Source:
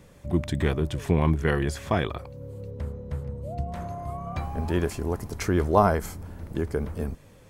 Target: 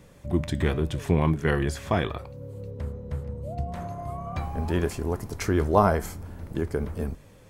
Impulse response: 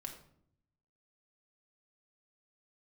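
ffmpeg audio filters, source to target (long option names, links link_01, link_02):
-af "flanger=delay=6.3:depth=4.8:regen=-84:speed=0.76:shape=triangular,volume=4.5dB"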